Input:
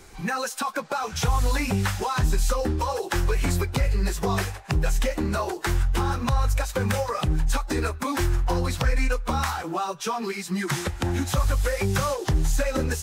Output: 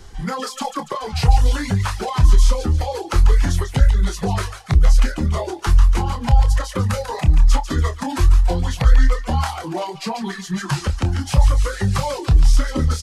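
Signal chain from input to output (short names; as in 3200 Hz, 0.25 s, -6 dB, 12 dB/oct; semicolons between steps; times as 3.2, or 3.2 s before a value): low shelf 140 Hz +11 dB; on a send: thinning echo 0.143 s, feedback 58%, high-pass 930 Hz, level -6 dB; on the sum: formant shift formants -4 st; reverb removal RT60 0.93 s; doubler 27 ms -10 dB; gain +2 dB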